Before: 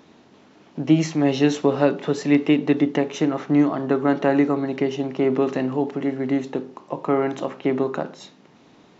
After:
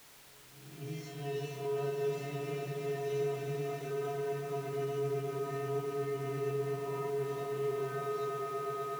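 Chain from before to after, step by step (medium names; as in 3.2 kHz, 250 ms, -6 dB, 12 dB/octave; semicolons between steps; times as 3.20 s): reverse spectral sustain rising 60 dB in 1.04 s; gain riding; feedback comb 140 Hz, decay 0.38 s, harmonics odd, mix 100%; on a send: echo with a slow build-up 118 ms, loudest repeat 8, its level -11 dB; on the sum: peak limiter -24 dBFS, peak gain reduction 11.5 dB; in parallel at -10 dB: word length cut 6-bit, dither triangular; on the sum: treble shelf 5.5 kHz -5.5 dB; spring tank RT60 3.3 s, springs 45 ms, chirp 65 ms, DRR 3.5 dB; trim -8 dB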